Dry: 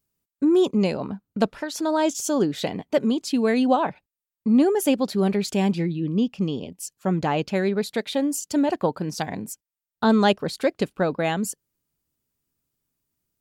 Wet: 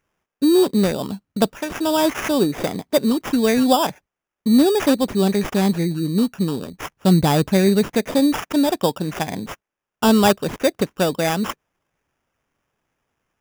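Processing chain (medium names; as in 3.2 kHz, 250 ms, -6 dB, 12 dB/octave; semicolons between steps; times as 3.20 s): 6.73–8.46 s: bass shelf 210 Hz +11 dB; sample-rate reducer 4.2 kHz, jitter 0%; trim +3.5 dB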